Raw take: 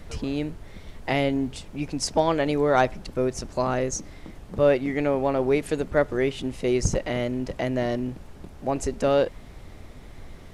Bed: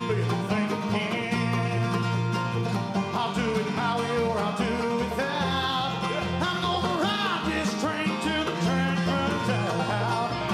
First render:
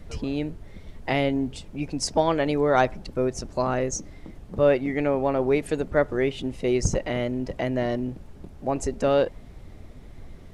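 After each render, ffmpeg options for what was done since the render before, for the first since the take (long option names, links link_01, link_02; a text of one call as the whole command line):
ffmpeg -i in.wav -af "afftdn=noise_reduction=6:noise_floor=-45" out.wav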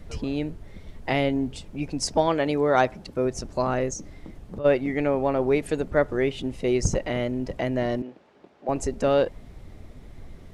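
ffmpeg -i in.wav -filter_complex "[0:a]asettb=1/sr,asplit=3[link_01][link_02][link_03];[link_01]atrim=end=2.274[link_04];[link_02]atrim=start=2.27:end=3.25,asetpts=PTS-STARTPTS,afade=type=in:duration=0.004:curve=qsin,afade=type=out:start_time=0.976:duration=0.004:curve=qsin,highpass=frequency=96:poles=1[link_05];[link_03]atrim=start=3.246[link_06];[link_04][link_05]acrossfade=duration=0.004:curve1=hsin:curve2=qsin[link_07];[link_07][link_06]acrossfade=duration=0.004:curve1=qsin:curve2=hsin,asplit=3[link_08][link_09][link_10];[link_08]afade=type=out:start_time=3.92:duration=0.02[link_11];[link_09]acompressor=threshold=-30dB:ratio=6:attack=3.2:release=140:knee=1:detection=peak,afade=type=in:start_time=3.92:duration=0.02,afade=type=out:start_time=4.64:duration=0.02[link_12];[link_10]afade=type=in:start_time=4.64:duration=0.02[link_13];[link_11][link_12][link_13]amix=inputs=3:normalize=0,asettb=1/sr,asplit=3[link_14][link_15][link_16];[link_14]atrim=end=8.024[link_17];[link_15]atrim=start=8.02:end=8.69,asetpts=PTS-STARTPTS,afade=type=in:duration=0.004:curve=qsin,afade=type=out:start_time=0.666:duration=0.004:curve=qsin,highpass=420,lowpass=4000[link_18];[link_16]atrim=start=8.686[link_19];[link_17][link_18]acrossfade=duration=0.004:curve1=hsin:curve2=qsin[link_20];[link_20][link_19]acrossfade=duration=0.004:curve1=qsin:curve2=hsin" out.wav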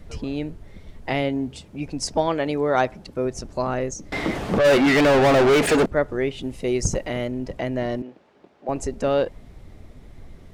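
ffmpeg -i in.wav -filter_complex "[0:a]asettb=1/sr,asplit=3[link_01][link_02][link_03];[link_01]atrim=end=1.224[link_04];[link_02]atrim=start=1.22:end=1.86,asetpts=PTS-STARTPTS,afade=type=in:duration=0.004:curve=qsin,afade=type=out:start_time=0.636:duration=0.004:curve=qsin,highpass=57[link_05];[link_03]atrim=start=1.856[link_06];[link_04][link_05]acrossfade=duration=0.004:curve1=hsin:curve2=qsin[link_07];[link_07][link_06]acrossfade=duration=0.004:curve1=qsin:curve2=hsin,asettb=1/sr,asplit=3[link_08][link_09][link_10];[link_08]atrim=end=4.124[link_11];[link_09]atrim=start=4.12:end=5.86,asetpts=PTS-STARTPTS,afade=type=in:duration=0.004:curve=qsin,afade=type=out:start_time=1.736:duration=0.004:curve=qsin,asplit=2[link_12][link_13];[link_13]highpass=frequency=720:poles=1,volume=36dB,asoftclip=type=tanh:threshold=-9.5dB[link_14];[link_12][link_14]amix=inputs=2:normalize=0,lowpass=frequency=3200:poles=1,volume=-6dB[link_15];[link_10]atrim=start=5.856[link_16];[link_11][link_15]acrossfade=duration=0.004:curve1=hsin:curve2=qsin[link_17];[link_17][link_16]acrossfade=duration=0.004:curve1=qsin:curve2=hsin,asettb=1/sr,asplit=3[link_18][link_19][link_20];[link_18]atrim=end=6.424[link_21];[link_19]atrim=start=6.42:end=7.28,asetpts=PTS-STARTPTS,afade=type=in:duration=0.004:curve=qsin,afade=type=out:start_time=0.856:duration=0.004:curve=qsin,highshelf=frequency=8700:gain=10[link_22];[link_20]atrim=start=7.276[link_23];[link_21][link_22]acrossfade=duration=0.004:curve1=hsin:curve2=qsin[link_24];[link_24][link_23]acrossfade=duration=0.004:curve1=qsin:curve2=hsin" out.wav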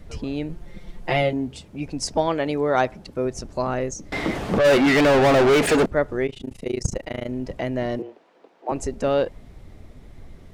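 ffmpeg -i in.wav -filter_complex "[0:a]asettb=1/sr,asplit=3[link_01][link_02][link_03];[link_01]atrim=end=0.494[link_04];[link_02]atrim=start=0.49:end=1.33,asetpts=PTS-STARTPTS,afade=type=in:duration=0.004:curve=qsin,afade=type=out:start_time=0.836:duration=0.004:curve=qsin,aecho=1:1:5.7:0.93,atrim=end_sample=37044[link_05];[link_03]atrim=start=1.326[link_06];[link_04][link_05]acrossfade=duration=0.004:curve1=hsin:curve2=qsin[link_07];[link_07][link_06]acrossfade=duration=0.004:curve1=qsin:curve2=hsin,asplit=3[link_08][link_09][link_10];[link_08]afade=type=out:start_time=6.26:duration=0.02[link_11];[link_09]tremolo=f=27:d=0.974,afade=type=in:start_time=6.26:duration=0.02,afade=type=out:start_time=7.27:duration=0.02[link_12];[link_10]afade=type=in:start_time=7.27:duration=0.02[link_13];[link_11][link_12][link_13]amix=inputs=3:normalize=0,asettb=1/sr,asplit=3[link_14][link_15][link_16];[link_14]atrim=end=7.994[link_17];[link_15]atrim=start=7.99:end=8.72,asetpts=PTS-STARTPTS,afade=type=in:duration=0.004:curve=qsin,afade=type=out:start_time=0.726:duration=0.004:curve=qsin,afreqshift=100[link_18];[link_16]atrim=start=8.716[link_19];[link_17][link_18]acrossfade=duration=0.004:curve1=hsin:curve2=qsin[link_20];[link_20][link_19]acrossfade=duration=0.004:curve1=qsin:curve2=hsin" out.wav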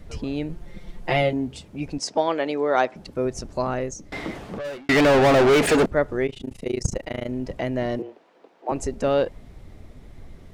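ffmpeg -i in.wav -filter_complex "[0:a]asettb=1/sr,asplit=3[link_01][link_02][link_03];[link_01]atrim=end=1.984[link_04];[link_02]atrim=start=1.98:end=2.96,asetpts=PTS-STARTPTS,afade=type=in:duration=0.004:curve=qsin,afade=type=out:start_time=0.976:duration=0.004:curve=qsin,highpass=270,lowpass=7100[link_05];[link_03]atrim=start=2.956[link_06];[link_04][link_05]acrossfade=duration=0.004:curve1=hsin:curve2=qsin[link_07];[link_07][link_06]acrossfade=duration=0.004:curve1=qsin:curve2=hsin,asplit=2[link_08][link_09];[link_08]atrim=end=4.89,asetpts=PTS-STARTPTS,afade=type=out:start_time=3.57:duration=1.32[link_10];[link_09]atrim=start=4.89,asetpts=PTS-STARTPTS,afade=type=in:duration=0.004:curve=hsin[link_11];[link_10][link_11]concat=n=2:v=0:a=1" out.wav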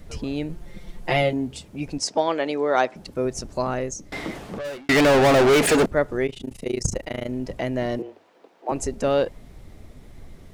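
ffmpeg -i in.wav -af "highshelf=frequency=6100:gain=7,bandreject=frequency=50:width_type=h:width=6,bandreject=frequency=100:width_type=h:width=6" out.wav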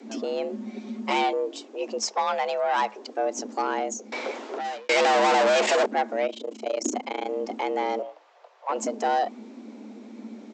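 ffmpeg -i in.wav -af "aresample=16000,asoftclip=type=tanh:threshold=-18dB,aresample=44100,afreqshift=210" out.wav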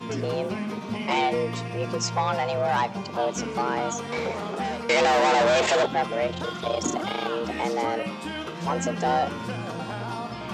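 ffmpeg -i in.wav -i bed.wav -filter_complex "[1:a]volume=-6.5dB[link_01];[0:a][link_01]amix=inputs=2:normalize=0" out.wav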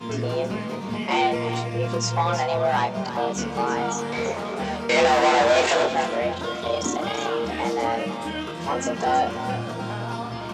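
ffmpeg -i in.wav -filter_complex "[0:a]asplit=2[link_01][link_02];[link_02]adelay=26,volume=-4dB[link_03];[link_01][link_03]amix=inputs=2:normalize=0,asplit=2[link_04][link_05];[link_05]aecho=0:1:327:0.282[link_06];[link_04][link_06]amix=inputs=2:normalize=0" out.wav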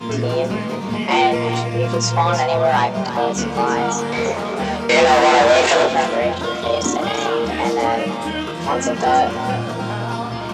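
ffmpeg -i in.wav -af "volume=6dB,alimiter=limit=-3dB:level=0:latency=1" out.wav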